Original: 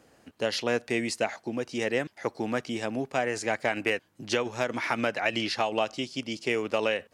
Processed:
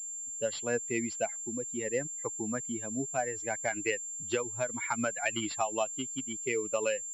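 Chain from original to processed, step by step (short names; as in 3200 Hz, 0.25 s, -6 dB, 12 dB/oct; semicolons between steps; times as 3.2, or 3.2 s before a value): per-bin expansion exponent 2; pulse-width modulation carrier 7300 Hz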